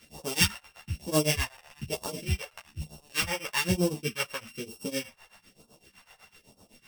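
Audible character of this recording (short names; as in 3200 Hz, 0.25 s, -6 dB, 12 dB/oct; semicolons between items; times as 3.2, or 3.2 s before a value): a buzz of ramps at a fixed pitch in blocks of 16 samples; phasing stages 2, 1.1 Hz, lowest notch 240–1900 Hz; tremolo triangle 7.9 Hz, depth 100%; a shimmering, thickened sound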